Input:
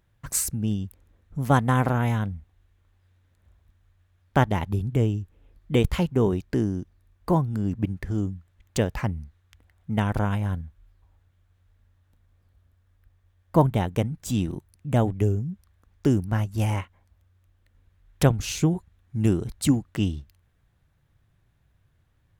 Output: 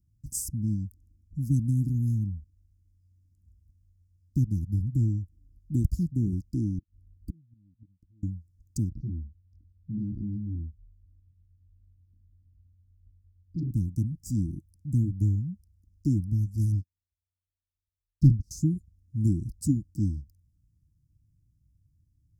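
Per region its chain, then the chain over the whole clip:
6.78–8.23 tilt shelf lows +6 dB, about 810 Hz + flipped gate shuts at -18 dBFS, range -38 dB
8.89–13.71 Gaussian blur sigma 2.6 samples + doubler 24 ms -4.5 dB + core saturation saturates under 1500 Hz
16.72–18.51 air absorption 310 m + sample leveller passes 3 + upward expander 2.5:1, over -26 dBFS
whole clip: Chebyshev band-stop 320–5000 Hz, order 5; bell 78 Hz +8 dB 2.5 oct; gain -7 dB

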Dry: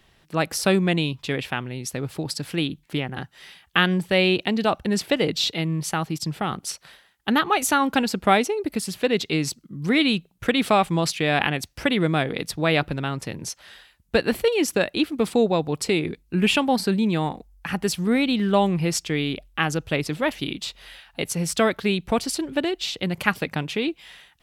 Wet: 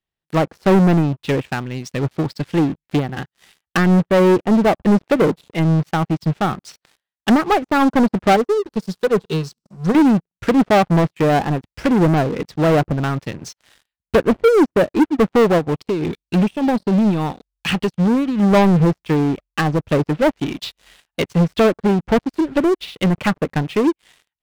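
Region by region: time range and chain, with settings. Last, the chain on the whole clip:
8.36–9.95 G.711 law mismatch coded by mu + fixed phaser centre 430 Hz, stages 8 + resonator 90 Hz, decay 0.73 s, mix 30%
15.58–18.43 resonant high shelf 2400 Hz +11 dB, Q 1.5 + compressor 3:1, threshold -21 dBFS
whole clip: treble ducked by the level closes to 850 Hz, closed at -20 dBFS; sample leveller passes 5; upward expander 2.5:1, over -20 dBFS; gain -1 dB

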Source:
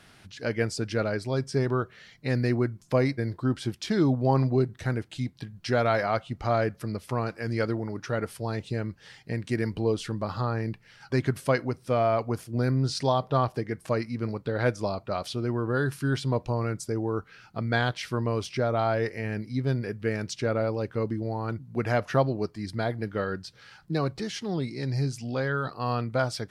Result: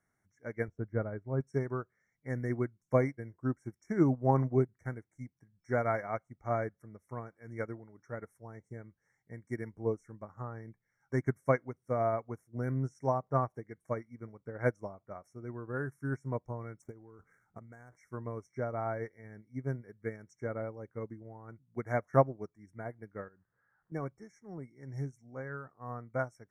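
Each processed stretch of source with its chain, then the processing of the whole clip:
0.68–1.41 LPF 1400 Hz + low shelf 98 Hz +11 dB
16.82–17.96 median filter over 9 samples + compressor 5:1, threshold -30 dBFS + transient shaper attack +6 dB, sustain +11 dB
23.28–23.92 switching spikes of -30.5 dBFS + steep low-pass 1800 Hz 72 dB/oct + compressor, threshold -36 dBFS
whole clip: FFT band-reject 2300–5400 Hz; upward expander 2.5:1, over -35 dBFS

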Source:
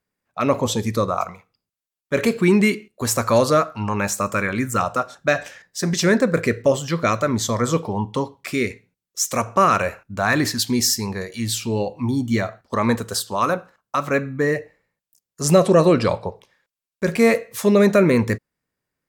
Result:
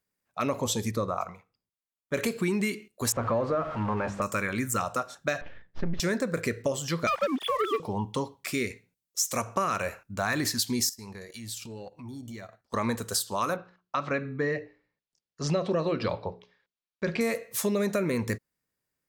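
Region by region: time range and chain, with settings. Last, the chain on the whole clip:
0.91–2.14 de-esser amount 30% + high shelf 3200 Hz -11 dB
3.12–4.22 zero-crossing step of -21.5 dBFS + LPF 1300 Hz + notches 50/100/150/200/250/300/350/400 Hz
5.41–6 half-wave gain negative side -12 dB + LPF 3300 Hz 24 dB/oct + tilt -3 dB/oct
7.07–7.8 sine-wave speech + low shelf 280 Hz -8.5 dB + sample leveller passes 2
10.89–12.74 compressor 8:1, threshold -31 dBFS + transient shaper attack -6 dB, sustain -11 dB
13.56–17.21 LPF 4600 Hz 24 dB/oct + notches 60/120/180/240/300/360/420 Hz
whole clip: high shelf 4500 Hz +8 dB; compressor, threshold -18 dBFS; gain -6 dB

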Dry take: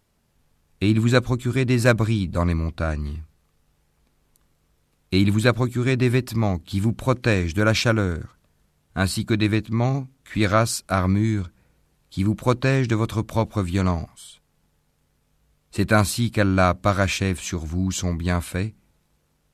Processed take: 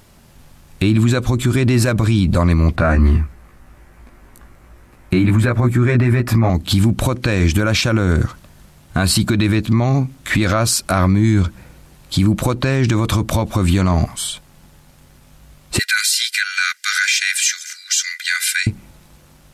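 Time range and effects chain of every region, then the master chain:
2.76–6.5 resonant high shelf 2600 Hz -8 dB, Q 1.5 + doubler 17 ms -3 dB
15.79–18.67 rippled Chebyshev high-pass 1400 Hz, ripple 6 dB + comb 2.5 ms, depth 86%
whole clip: notch 450 Hz, Q 13; compressor 3:1, threshold -27 dBFS; maximiser +25 dB; gain -5.5 dB

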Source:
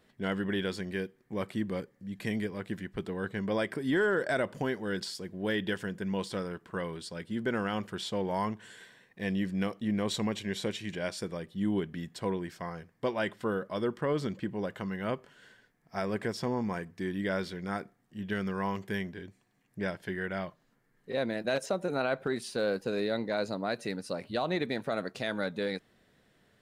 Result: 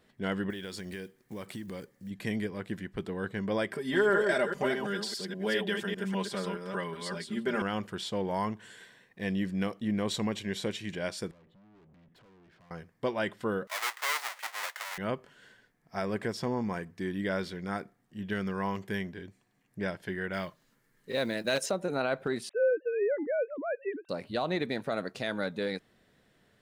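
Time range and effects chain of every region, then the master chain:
0.5–2.11 block floating point 7-bit + high shelf 3800 Hz +9 dB + compressor, threshold -36 dBFS
3.73–7.62 reverse delay 0.201 s, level -4.5 dB + low shelf 260 Hz -8 dB + comb 5 ms, depth 82%
11.31–12.71 air absorption 380 m + compressor 4:1, threshold -46 dBFS + tube stage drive 58 dB, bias 0.35
13.67–14.98 half-waves squared off + HPF 840 Hz 24 dB/oct + bell 2000 Hz +7 dB 0.25 oct
20.33–21.71 high shelf 2500 Hz +8.5 dB + notch 730 Hz, Q 9.6 + short-mantissa float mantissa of 4-bit
22.49–24.09 sine-wave speech + LPF 2300 Hz + low shelf 380 Hz +5.5 dB
whole clip: dry

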